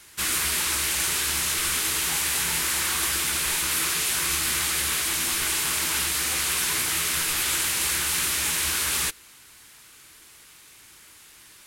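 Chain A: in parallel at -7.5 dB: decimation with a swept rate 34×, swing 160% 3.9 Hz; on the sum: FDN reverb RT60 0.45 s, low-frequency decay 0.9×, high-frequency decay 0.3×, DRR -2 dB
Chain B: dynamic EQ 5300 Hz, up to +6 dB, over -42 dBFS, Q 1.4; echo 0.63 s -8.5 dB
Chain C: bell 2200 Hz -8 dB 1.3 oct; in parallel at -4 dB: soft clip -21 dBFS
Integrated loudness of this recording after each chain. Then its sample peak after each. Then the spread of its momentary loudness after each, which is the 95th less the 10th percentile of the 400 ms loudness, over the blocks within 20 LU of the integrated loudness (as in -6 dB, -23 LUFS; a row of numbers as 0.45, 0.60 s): -20.0, -20.0, -20.5 LUFS; -7.5, -9.5, -11.0 dBFS; 1, 2, 1 LU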